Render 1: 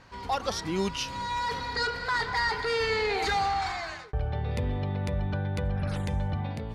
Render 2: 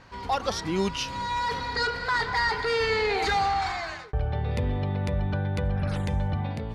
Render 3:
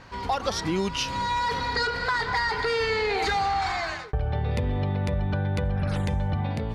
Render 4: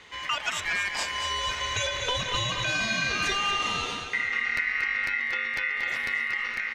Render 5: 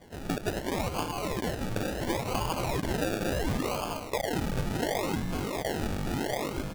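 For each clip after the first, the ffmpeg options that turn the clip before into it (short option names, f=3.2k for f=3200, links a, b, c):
-af "highshelf=f=7.1k:g=-4.5,volume=2.5dB"
-af "acompressor=threshold=-26dB:ratio=6,volume=4dB"
-af "aeval=exprs='val(0)*sin(2*PI*2000*n/s)':c=same,aecho=1:1:233|466|699|932|1165:0.398|0.187|0.0879|0.0413|0.0194"
-af "acrusher=samples=33:mix=1:aa=0.000001:lfo=1:lforange=19.8:lforate=0.71,volume=-2dB"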